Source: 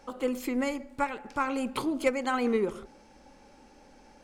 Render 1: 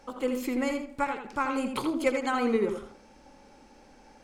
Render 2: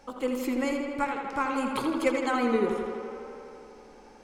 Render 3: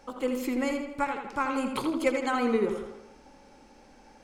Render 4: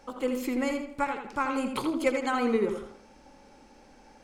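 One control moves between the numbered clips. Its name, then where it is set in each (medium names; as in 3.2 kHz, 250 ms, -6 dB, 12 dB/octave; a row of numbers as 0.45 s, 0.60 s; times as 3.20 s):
tape echo, feedback: 20%, 88%, 56%, 37%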